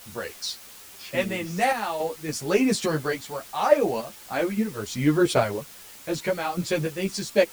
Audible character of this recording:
sample-and-hold tremolo, depth 75%
a quantiser's noise floor 8 bits, dither triangular
a shimmering, thickened sound

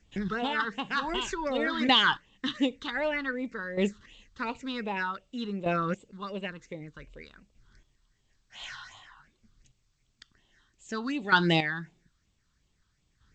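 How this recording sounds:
phaser sweep stages 6, 2.7 Hz, lowest notch 590–1,600 Hz
chopped level 0.53 Hz, depth 65%, duty 15%
G.722

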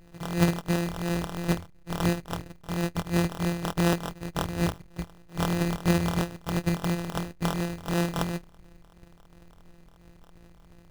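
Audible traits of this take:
a buzz of ramps at a fixed pitch in blocks of 256 samples
phaser sweep stages 2, 2.9 Hz, lowest notch 330–2,300 Hz
aliases and images of a low sample rate 2,200 Hz, jitter 0%

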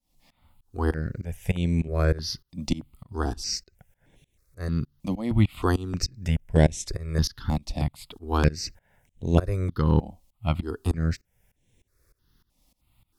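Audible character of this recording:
tremolo saw up 3.3 Hz, depth 95%
notches that jump at a steady rate 3.2 Hz 410–4,700 Hz

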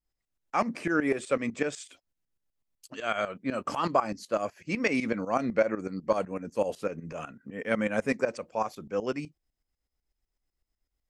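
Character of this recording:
tremolo saw up 8 Hz, depth 80%

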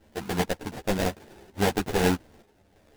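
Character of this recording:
aliases and images of a low sample rate 1,200 Hz, jitter 20%
sample-and-hold tremolo 2.9 Hz
a shimmering, thickened sound

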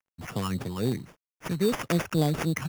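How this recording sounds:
a quantiser's noise floor 10 bits, dither none
phaser sweep stages 6, 3.7 Hz, lowest notch 520–2,100 Hz
aliases and images of a low sample rate 4,100 Hz, jitter 0%

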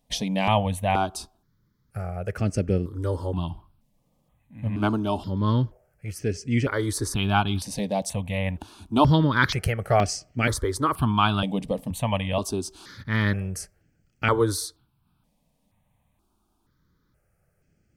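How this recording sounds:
notches that jump at a steady rate 2.1 Hz 370–3,700 Hz

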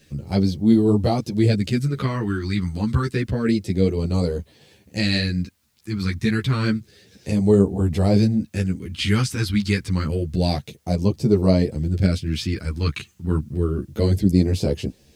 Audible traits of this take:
phaser sweep stages 2, 0.29 Hz, lowest notch 570–1,500 Hz
a quantiser's noise floor 12 bits, dither triangular
a shimmering, thickened sound

